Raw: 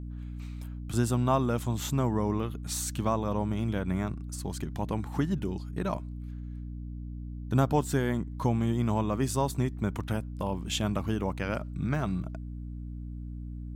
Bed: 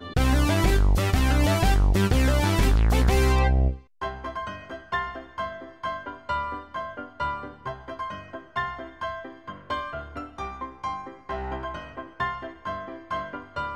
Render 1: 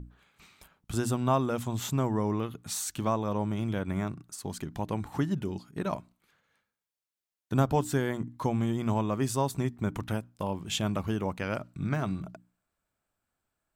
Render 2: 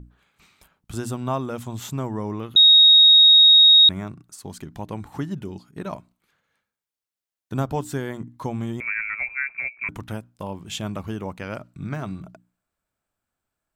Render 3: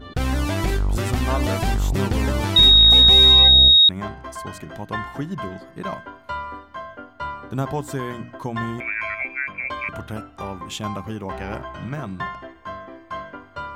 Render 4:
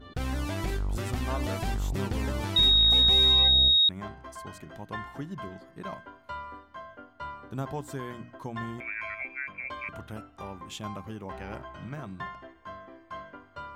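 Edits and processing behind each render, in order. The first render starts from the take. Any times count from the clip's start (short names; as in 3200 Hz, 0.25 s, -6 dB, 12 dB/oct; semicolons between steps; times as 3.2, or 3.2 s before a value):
notches 60/120/180/240/300 Hz
2.56–3.89 bleep 3760 Hz -8.5 dBFS; 8.8–9.89 inverted band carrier 2500 Hz
add bed -1.5 dB
gain -9 dB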